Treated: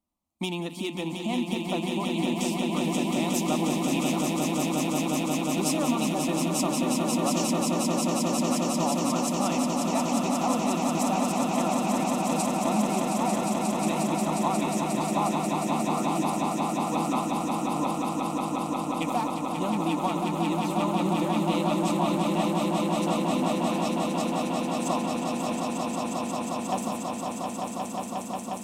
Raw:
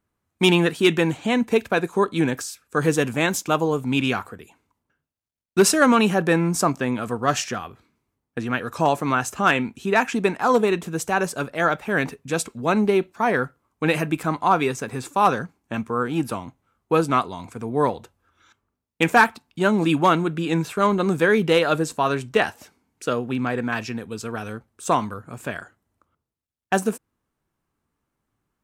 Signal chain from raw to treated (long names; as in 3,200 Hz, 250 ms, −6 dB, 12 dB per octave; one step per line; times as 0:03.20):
downward compressor 4 to 1, threshold −20 dBFS, peak gain reduction 8.5 dB
phaser with its sweep stopped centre 430 Hz, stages 6
echo that builds up and dies away 179 ms, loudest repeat 8, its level −5 dB
level −4 dB